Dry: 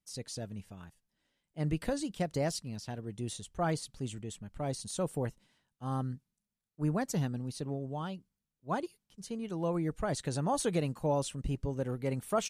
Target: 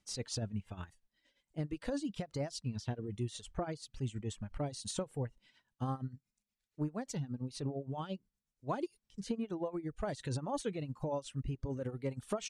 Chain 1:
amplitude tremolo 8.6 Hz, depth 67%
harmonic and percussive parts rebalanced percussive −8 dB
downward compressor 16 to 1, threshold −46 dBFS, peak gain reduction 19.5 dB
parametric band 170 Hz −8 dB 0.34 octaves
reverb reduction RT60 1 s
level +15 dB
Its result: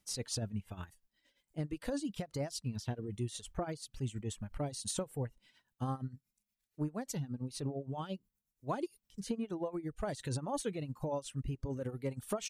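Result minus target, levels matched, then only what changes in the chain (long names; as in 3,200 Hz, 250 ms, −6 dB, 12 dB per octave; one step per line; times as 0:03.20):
8,000 Hz band +3.0 dB
add after downward compressor: Bessel low-pass filter 7,200 Hz, order 6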